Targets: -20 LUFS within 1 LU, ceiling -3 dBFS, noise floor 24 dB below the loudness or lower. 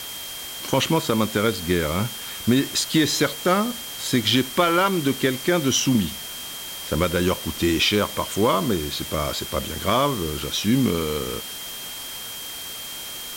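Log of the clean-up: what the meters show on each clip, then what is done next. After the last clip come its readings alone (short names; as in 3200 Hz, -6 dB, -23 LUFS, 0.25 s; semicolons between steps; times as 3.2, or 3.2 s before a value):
steady tone 3200 Hz; tone level -36 dBFS; noise floor -34 dBFS; noise floor target -47 dBFS; loudness -23.0 LUFS; peak -6.0 dBFS; loudness target -20.0 LUFS
-> notch 3200 Hz, Q 30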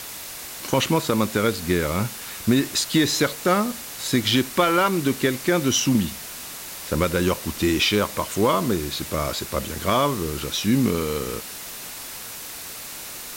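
steady tone none; noise floor -36 dBFS; noise floor target -47 dBFS
-> denoiser 11 dB, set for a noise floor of -36 dBFS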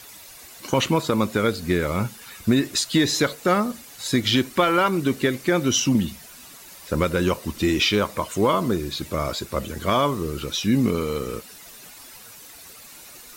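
noise floor -44 dBFS; noise floor target -47 dBFS
-> denoiser 6 dB, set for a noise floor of -44 dBFS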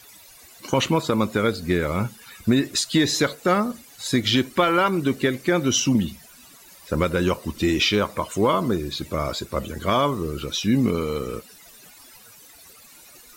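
noise floor -48 dBFS; loudness -22.5 LUFS; peak -6.5 dBFS; loudness target -20.0 LUFS
-> gain +2.5 dB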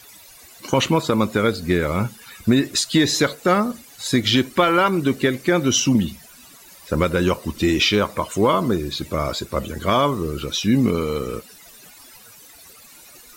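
loudness -20.0 LUFS; peak -4.0 dBFS; noise floor -46 dBFS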